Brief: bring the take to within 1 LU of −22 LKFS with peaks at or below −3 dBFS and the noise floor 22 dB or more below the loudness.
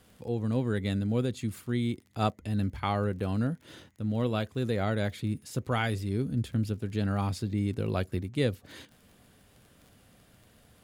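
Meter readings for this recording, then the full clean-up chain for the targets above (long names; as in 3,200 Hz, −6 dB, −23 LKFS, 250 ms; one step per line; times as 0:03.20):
crackle rate 30 per second; integrated loudness −31.0 LKFS; sample peak −14.0 dBFS; target loudness −22.0 LKFS
→ click removal
level +9 dB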